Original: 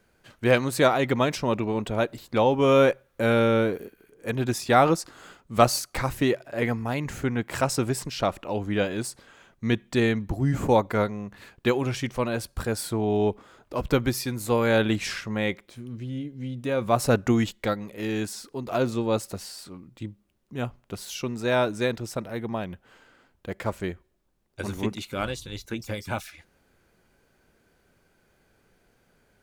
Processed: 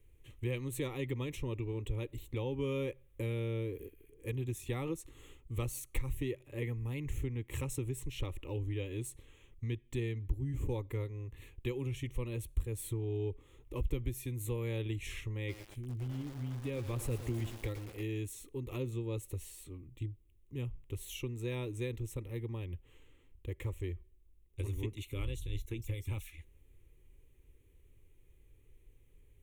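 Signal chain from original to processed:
guitar amp tone stack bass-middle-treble 10-0-1
downward compressor 3 to 1, threshold −48 dBFS, peak gain reduction 12.5 dB
phaser with its sweep stopped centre 1,000 Hz, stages 8
0:15.37–0:18.05: feedback echo at a low word length 114 ms, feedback 80%, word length 10 bits, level −10 dB
level +17.5 dB

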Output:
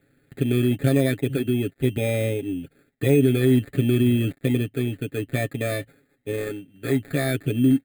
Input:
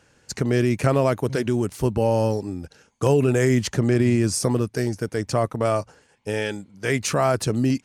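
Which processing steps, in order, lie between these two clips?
gap after every zero crossing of 0.12 ms
high-frequency loss of the air 84 metres
decimation without filtering 15×
parametric band 8,200 Hz +3.5 dB 0.52 octaves
phaser with its sweep stopped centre 2,400 Hz, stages 4
comb filter 7.3 ms, depth 67%
hollow resonant body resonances 300/1,800 Hz, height 7 dB, ringing for 20 ms
level −4 dB

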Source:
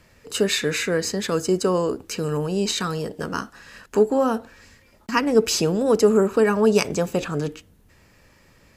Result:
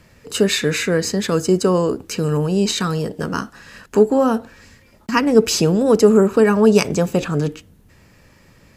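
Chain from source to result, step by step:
parametric band 150 Hz +4.5 dB 1.9 octaves
level +3 dB

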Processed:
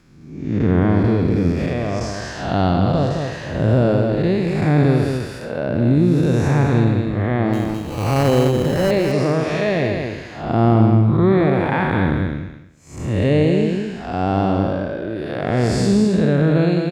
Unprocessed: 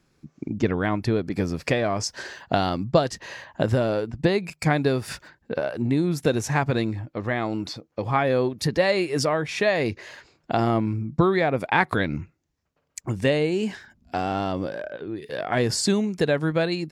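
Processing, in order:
spectrum smeared in time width 232 ms
0:01.52–0:02.01: output level in coarse steps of 16 dB
0:07.53–0:08.91: sample-rate reduction 3,500 Hz, jitter 0%
spectral tilt −2 dB per octave
on a send: repeating echo 210 ms, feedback 16%, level −5.5 dB
on the sum: one half of a high-frequency compander encoder only
level +6 dB

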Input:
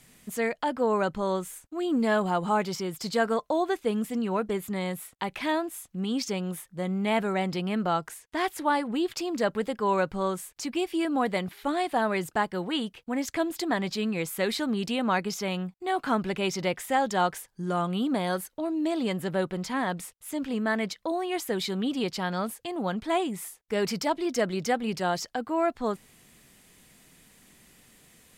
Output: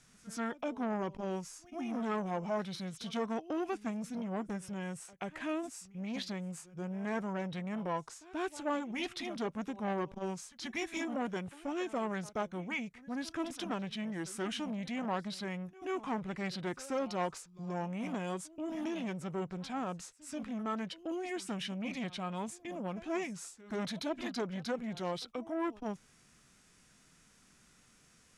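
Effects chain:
backwards echo 133 ms −20.5 dB
formants moved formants −5 semitones
saturating transformer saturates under 800 Hz
level −7.5 dB

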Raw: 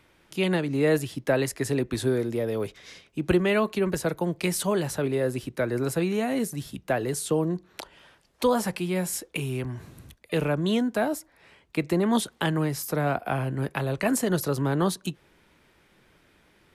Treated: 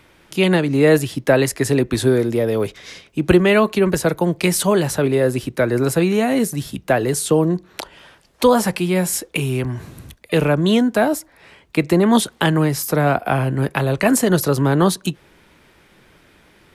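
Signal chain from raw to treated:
level +9 dB

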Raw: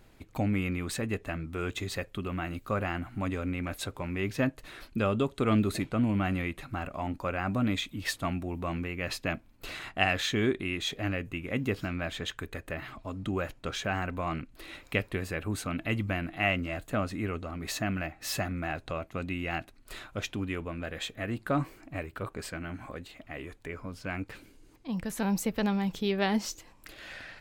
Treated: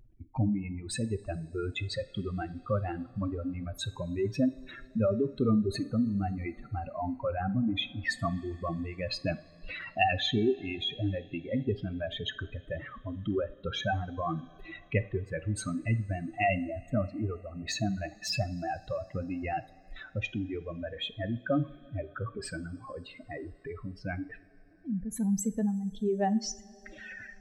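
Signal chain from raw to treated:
expanding power law on the bin magnitudes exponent 2.7
reverb reduction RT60 1.2 s
coupled-rooms reverb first 0.42 s, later 4.3 s, from −18 dB, DRR 12.5 dB
level +1.5 dB

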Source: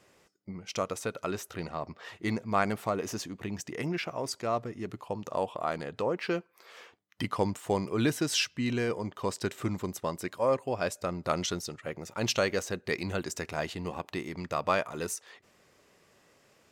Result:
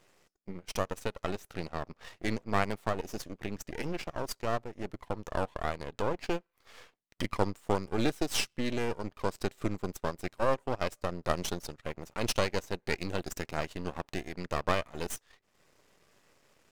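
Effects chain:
dynamic equaliser 1,500 Hz, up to −4 dB, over −48 dBFS, Q 2.4
transient designer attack +2 dB, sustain −10 dB
half-wave rectification
level +1.5 dB

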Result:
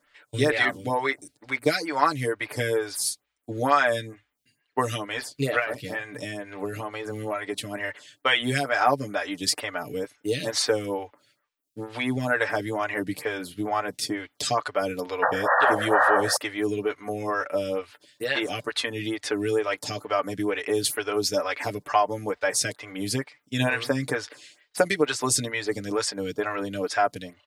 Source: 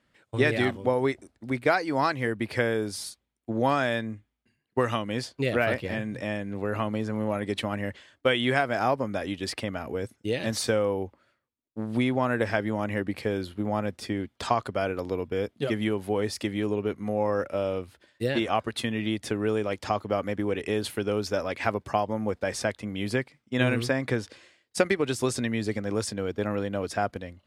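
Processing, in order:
tilt shelving filter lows −6.5 dB, about 1,100 Hz
comb filter 6.8 ms, depth 77%
dynamic equaliser 2,900 Hz, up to −5 dB, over −41 dBFS, Q 1.4
0:05.59–0:07.75: downward compressor 6 to 1, threshold −29 dBFS, peak gain reduction 9 dB
0:15.22–0:16.37: sound drawn into the spectrogram noise 490–1,900 Hz −24 dBFS
phaser with staggered stages 2.2 Hz
level +5.5 dB

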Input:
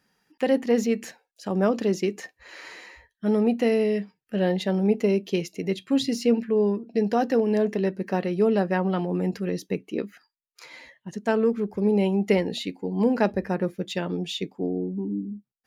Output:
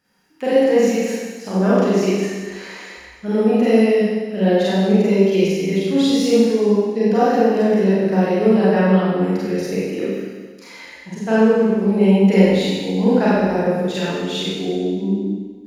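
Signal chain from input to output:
four-comb reverb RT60 1.5 s, combs from 32 ms, DRR −9.5 dB
level −2 dB

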